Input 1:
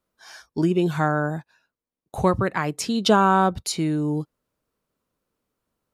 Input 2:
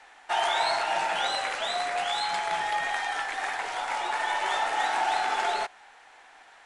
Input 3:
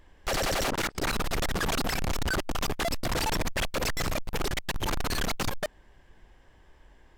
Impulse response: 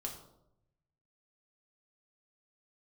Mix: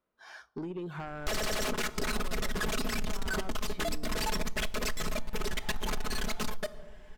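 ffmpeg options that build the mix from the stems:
-filter_complex "[0:a]bass=frequency=250:gain=-5,treble=frequency=4000:gain=-13,acompressor=threshold=-31dB:ratio=5,asoftclip=type=tanh:threshold=-29dB,volume=-3.5dB,asplit=3[link_01][link_02][link_03];[link_02]volume=-13.5dB[link_04];[1:a]adelay=900,volume=-15.5dB[link_05];[2:a]equalizer=frequency=810:width=3.8:gain=-5.5,aecho=1:1:4.7:0.75,adelay=1000,volume=0dB,asplit=2[link_06][link_07];[link_07]volume=-9dB[link_08];[link_03]apad=whole_len=333185[link_09];[link_05][link_09]sidechaincompress=threshold=-57dB:ratio=8:attack=16:release=1270[link_10];[3:a]atrim=start_sample=2205[link_11];[link_04][link_08]amix=inputs=2:normalize=0[link_12];[link_12][link_11]afir=irnorm=-1:irlink=0[link_13];[link_01][link_10][link_06][link_13]amix=inputs=4:normalize=0,acompressor=threshold=-28dB:ratio=6"

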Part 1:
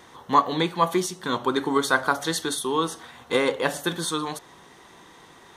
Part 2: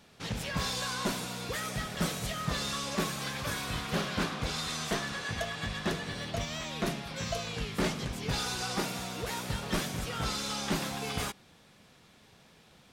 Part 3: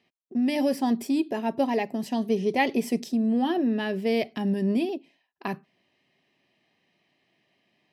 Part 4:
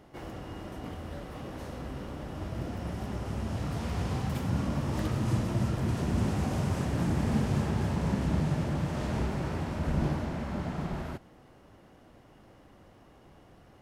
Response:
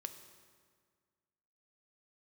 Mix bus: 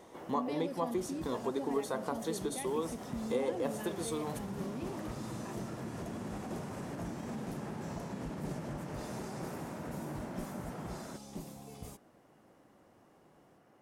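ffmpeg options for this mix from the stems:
-filter_complex "[0:a]equalizer=frequency=520:width_type=o:width=1.1:gain=6.5,volume=-6dB[link_01];[1:a]equalizer=frequency=2200:width_type=o:width=2.6:gain=-8.5,adelay=650,volume=-10dB[link_02];[2:a]lowpass=10000,volume=-11.5dB[link_03];[3:a]highpass=160,volume=-5dB[link_04];[link_01][link_02]amix=inputs=2:normalize=0,equalizer=frequency=1500:width_type=o:width=0.66:gain=-11.5,acompressor=threshold=-37dB:ratio=2,volume=0dB[link_05];[link_03][link_04]amix=inputs=2:normalize=0,lowshelf=frequency=83:gain=-11,alimiter=level_in=8.5dB:limit=-24dB:level=0:latency=1:release=58,volume=-8.5dB,volume=0dB[link_06];[link_05][link_06]amix=inputs=2:normalize=0,equalizer=frequency=3700:width_type=o:width=1.3:gain=-7"

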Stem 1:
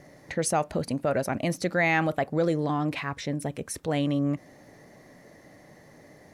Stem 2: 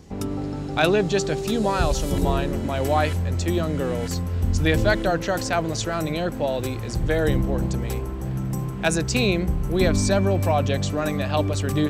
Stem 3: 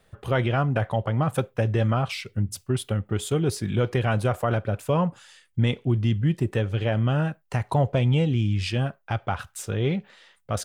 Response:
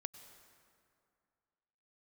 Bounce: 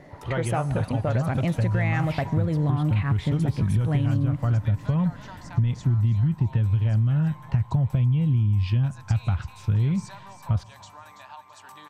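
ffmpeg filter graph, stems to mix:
-filter_complex "[0:a]volume=1dB,asplit=2[link_01][link_02];[link_02]volume=-6.5dB[link_03];[1:a]highpass=frequency=940:width_type=q:width=11,acompressor=threshold=-23dB:ratio=6,volume=-19.5dB,asplit=3[link_04][link_05][link_06];[link_05]volume=-4dB[link_07];[link_06]volume=-7dB[link_08];[2:a]volume=-3.5dB,asplit=2[link_09][link_10];[link_10]volume=-16.5dB[link_11];[link_01][link_09]amix=inputs=2:normalize=0,lowpass=frequency=5100:width=0.5412,lowpass=frequency=5100:width=1.3066,acompressor=threshold=-27dB:ratio=2,volume=0dB[link_12];[3:a]atrim=start_sample=2205[link_13];[link_03][link_07][link_11]amix=inputs=3:normalize=0[link_14];[link_14][link_13]afir=irnorm=-1:irlink=0[link_15];[link_08]aecho=0:1:332|664|996|1328|1660:1|0.39|0.152|0.0593|0.0231[link_16];[link_04][link_12][link_15][link_16]amix=inputs=4:normalize=0,asubboost=boost=10.5:cutoff=140,acompressor=threshold=-19dB:ratio=6"

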